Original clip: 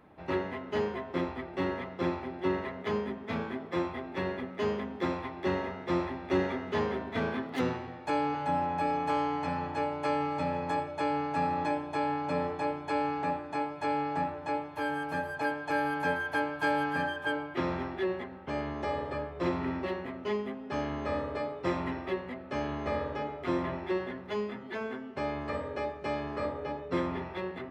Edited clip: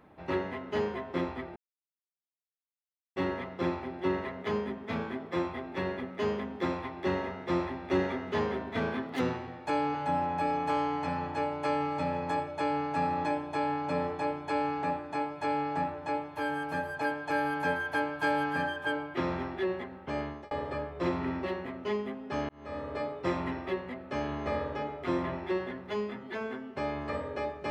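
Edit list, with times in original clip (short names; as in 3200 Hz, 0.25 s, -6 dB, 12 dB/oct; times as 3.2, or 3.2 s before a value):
1.56 insert silence 1.60 s
18.62–18.91 fade out
20.89–21.41 fade in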